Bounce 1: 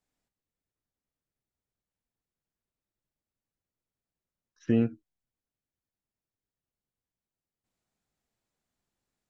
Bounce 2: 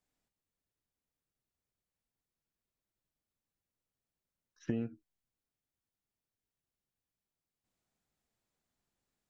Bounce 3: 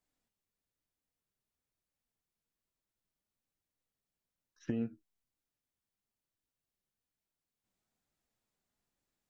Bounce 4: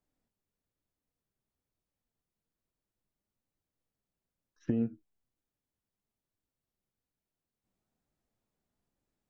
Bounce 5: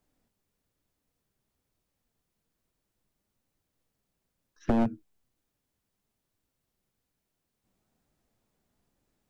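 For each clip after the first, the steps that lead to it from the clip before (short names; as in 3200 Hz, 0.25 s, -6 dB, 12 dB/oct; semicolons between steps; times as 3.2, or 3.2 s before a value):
compressor 6:1, threshold -30 dBFS, peak gain reduction 11 dB; gain -1.5 dB
flange 1.1 Hz, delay 2.9 ms, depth 2.4 ms, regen +78%; gain +3.5 dB
tilt shelf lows +5.5 dB, about 1100 Hz
one-sided fold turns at -29 dBFS; gain +8.5 dB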